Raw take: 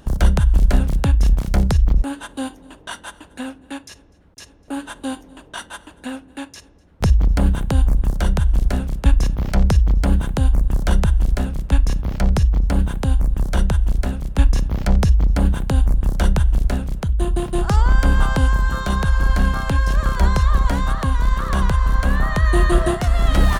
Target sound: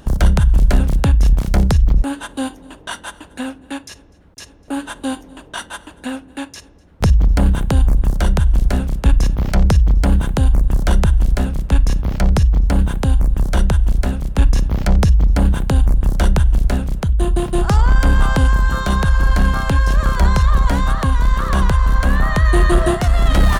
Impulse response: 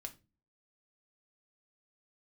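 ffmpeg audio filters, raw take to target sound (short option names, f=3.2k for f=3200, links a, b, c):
-af "asoftclip=type=tanh:threshold=-7.5dB,volume=4dB"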